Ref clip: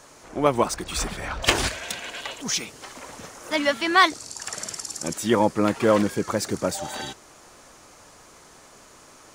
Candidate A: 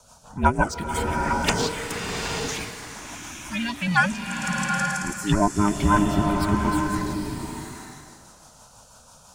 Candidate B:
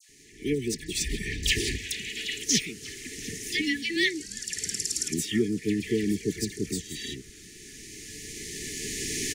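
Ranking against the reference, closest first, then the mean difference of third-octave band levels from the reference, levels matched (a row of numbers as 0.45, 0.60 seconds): A, B; 7.5, 13.0 decibels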